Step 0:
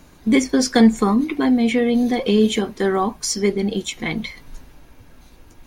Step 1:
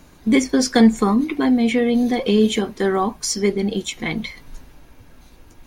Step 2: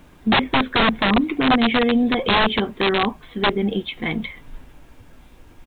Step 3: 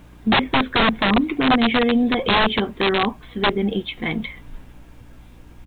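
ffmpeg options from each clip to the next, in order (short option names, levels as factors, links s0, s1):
-af anull
-af "aresample=8000,aeval=exprs='(mod(3.55*val(0)+1,2)-1)/3.55':c=same,aresample=44100,acrusher=bits=9:mix=0:aa=0.000001"
-af "aeval=exprs='val(0)+0.00501*(sin(2*PI*60*n/s)+sin(2*PI*2*60*n/s)/2+sin(2*PI*3*60*n/s)/3+sin(2*PI*4*60*n/s)/4+sin(2*PI*5*60*n/s)/5)':c=same"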